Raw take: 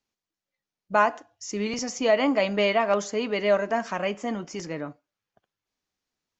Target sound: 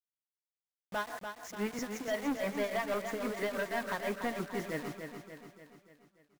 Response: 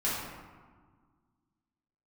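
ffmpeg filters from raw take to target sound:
-filter_complex "[0:a]highshelf=f=2.5k:t=q:w=3:g=-10,alimiter=limit=-17.5dB:level=0:latency=1:release=75,asoftclip=type=tanh:threshold=-27.5dB,tremolo=f=6.1:d=0.91,acrusher=bits=7:mix=0:aa=0.000001,asplit=2[a][b];[b]aecho=0:1:291|582|873|1164|1455|1746:0.447|0.232|0.121|0.0628|0.0327|0.017[c];[a][c]amix=inputs=2:normalize=0"

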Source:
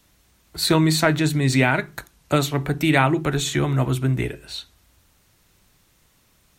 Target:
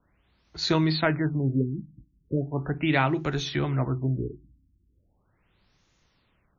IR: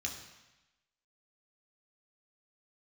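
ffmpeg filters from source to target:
-af "afftfilt=real='re*lt(b*sr/1024,310*pow(7100/310,0.5+0.5*sin(2*PI*0.38*pts/sr)))':imag='im*lt(b*sr/1024,310*pow(7100/310,0.5+0.5*sin(2*PI*0.38*pts/sr)))':win_size=1024:overlap=0.75,volume=-5.5dB"

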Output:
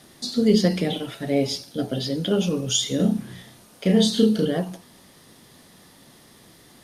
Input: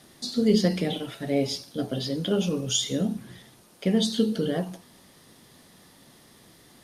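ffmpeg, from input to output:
-filter_complex "[0:a]asettb=1/sr,asplit=3[a][b][c];[a]atrim=end=1.574[d];[b]atrim=start=1.57:end=2.29,asetpts=PTS-STARTPTS,afade=t=in:d=0.004:c=qsin,afade=t=out:st=0.716:d=0.004:c=qsin,bandreject=f=1.1k:w=8.8[e];[c]atrim=start=2.286[f];[d][e]acrossfade=d=0.004:c1=hsin:c2=qsin[g];[g][f]acrossfade=d=0.004:c1=qsin:c2=hsin,asettb=1/sr,asplit=3[h][i][j];[h]atrim=end=2.964[k];[i]atrim=start=2.96:end=4.45,asetpts=PTS-STARTPTS,afade=t=in:d=0.004:c=qsin,afade=t=out:st=1.486:d=0.004:c=qsin,asplit=2[l][m];[m]adelay=33,volume=-3dB[n];[l][n]amix=inputs=2:normalize=0,atrim=end_sample=65709[o];[j]atrim=start=4.446[p];[k][o]acrossfade=d=0.004:c1=hsin:c2=qsin[q];[q][p]acrossfade=d=0.004:c1=qsin:c2=hsin,volume=3dB"

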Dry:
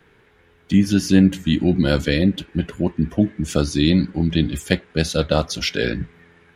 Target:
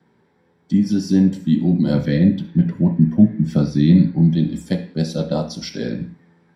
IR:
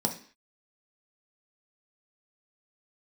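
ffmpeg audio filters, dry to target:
-filter_complex "[0:a]asettb=1/sr,asplit=3[a][b][c];[a]atrim=end=1.934[d];[b]atrim=start=1.93:end=4.31,asetpts=PTS-STARTPTS,afade=t=in:d=0.004:c=qsin,afade=t=out:st=2.376:d=0.004:c=qsin,equalizer=f=125:t=o:w=1:g=10,equalizer=f=2k:t=o:w=1:g=7,equalizer=f=8k:t=o:w=1:g=-11[e];[c]atrim=start=4.306[f];[d][e]acrossfade=d=0.004:c1=hsin:c2=qsin[g];[g][f]acrossfade=d=0.004:c1=qsin:c2=hsin[h];[1:a]atrim=start_sample=2205,afade=t=out:st=0.26:d=0.01,atrim=end_sample=11907[i];[h][i]afir=irnorm=-1:irlink=0,volume=-14.5dB"

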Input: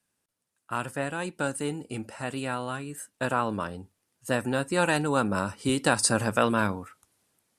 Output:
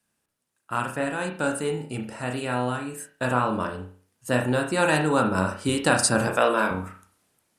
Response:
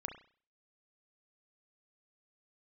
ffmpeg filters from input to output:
-filter_complex "[0:a]asettb=1/sr,asplit=3[a][b][c];[a]atrim=end=6.274[d];[b]atrim=start=6.27:end=6.71,asetpts=PTS-STARTPTS,afade=t=in:d=0.004:c=qsin,afade=t=out:st=0.436:d=0.004:c=qsin,highpass=310[e];[c]atrim=start=6.706[f];[d][e]acrossfade=d=0.004:c1=hsin:c2=qsin[g];[g][f]acrossfade=d=0.004:c1=qsin:c2=hsin[h];[1:a]atrim=start_sample=2205[i];[h][i]afir=irnorm=-1:irlink=0,volume=5dB"

